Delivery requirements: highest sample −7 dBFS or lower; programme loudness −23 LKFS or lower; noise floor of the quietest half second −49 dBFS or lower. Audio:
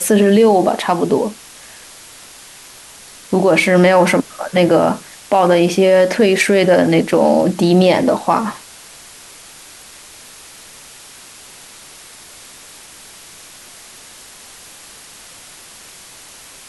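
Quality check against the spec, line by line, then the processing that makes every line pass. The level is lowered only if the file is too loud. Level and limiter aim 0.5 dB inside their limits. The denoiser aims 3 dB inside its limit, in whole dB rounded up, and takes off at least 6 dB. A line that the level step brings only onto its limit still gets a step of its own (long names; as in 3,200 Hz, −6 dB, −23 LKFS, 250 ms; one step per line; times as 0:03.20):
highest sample −3.0 dBFS: out of spec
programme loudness −13.5 LKFS: out of spec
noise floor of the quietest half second −39 dBFS: out of spec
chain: broadband denoise 6 dB, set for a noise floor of −39 dBFS
level −10 dB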